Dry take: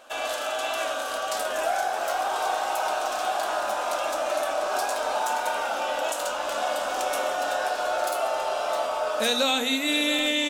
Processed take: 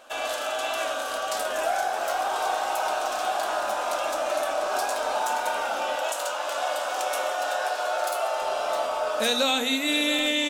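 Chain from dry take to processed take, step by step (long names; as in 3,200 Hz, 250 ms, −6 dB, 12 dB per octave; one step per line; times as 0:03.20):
0:05.96–0:08.42: high-pass filter 430 Hz 12 dB per octave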